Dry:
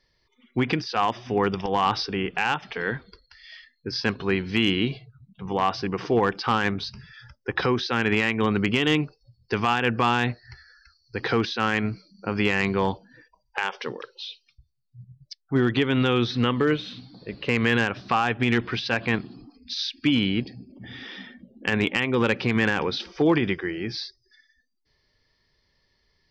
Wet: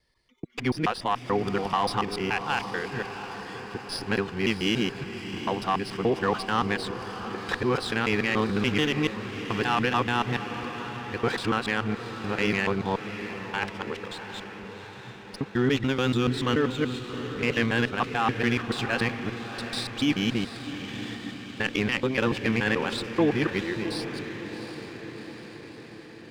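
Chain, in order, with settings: time reversed locally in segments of 144 ms; echo that smears into a reverb 724 ms, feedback 62%, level -10 dB; sliding maximum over 3 samples; trim -2.5 dB

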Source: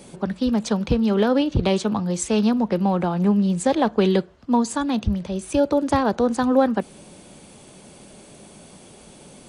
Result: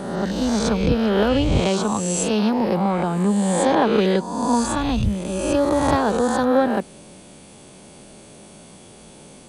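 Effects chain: reverse spectral sustain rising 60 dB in 1.31 s; trim -1.5 dB

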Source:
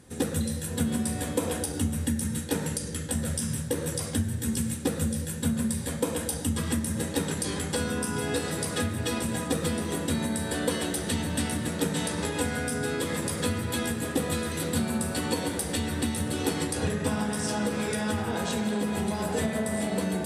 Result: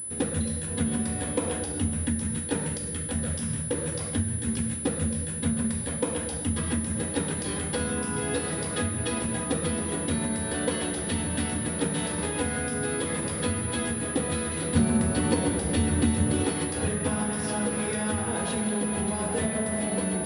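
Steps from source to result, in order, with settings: 14.75–16.44 s: bass shelf 470 Hz +7 dB; class-D stage that switches slowly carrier 10 kHz

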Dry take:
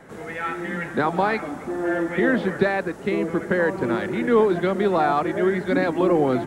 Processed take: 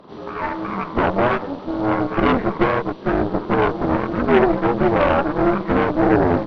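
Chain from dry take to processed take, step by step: frequency axis rescaled in octaves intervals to 76%; Chebyshev shaper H 3 -15 dB, 5 -22 dB, 6 -13 dB, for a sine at -8.5 dBFS; trim +5 dB

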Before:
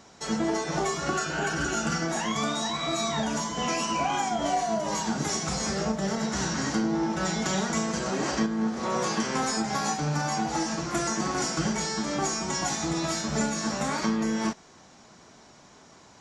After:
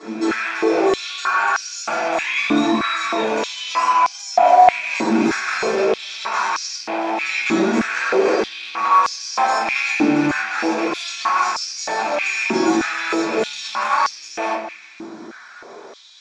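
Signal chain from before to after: rattle on loud lows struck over -35 dBFS, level -22 dBFS; in parallel at +0.5 dB: compression, threshold -34 dBFS, peak gain reduction 12.5 dB; on the sum: peaking EQ 7.2 kHz -4.5 dB 0.65 oct; pre-echo 253 ms -14.5 dB; simulated room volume 83 m³, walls mixed, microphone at 3.9 m; overload inside the chain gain 3.5 dB; distance through air 72 m; band-stop 2.9 kHz, Q 8.8; on a send: filtered feedback delay 196 ms, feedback 46%, low-pass 2.4 kHz, level -13 dB; on the sum: peak limiter -4 dBFS, peak gain reduction 3.5 dB; step-sequenced high-pass 3.2 Hz 300–5300 Hz; trim -9 dB

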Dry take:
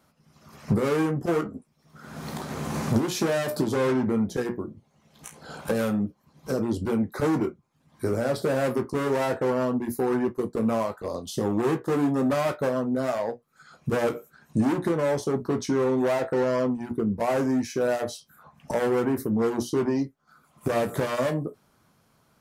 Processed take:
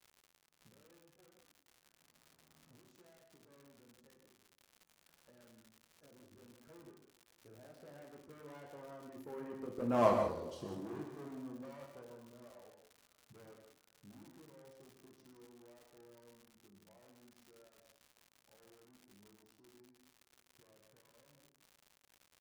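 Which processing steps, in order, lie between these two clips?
Doppler pass-by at 10.07 s, 25 m/s, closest 1.4 m; treble shelf 6 kHz -8 dB; on a send: feedback delay 297 ms, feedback 55%, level -23.5 dB; on the sum: gated-style reverb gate 220 ms flat, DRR 2 dB; crackle 160 per s -49 dBFS

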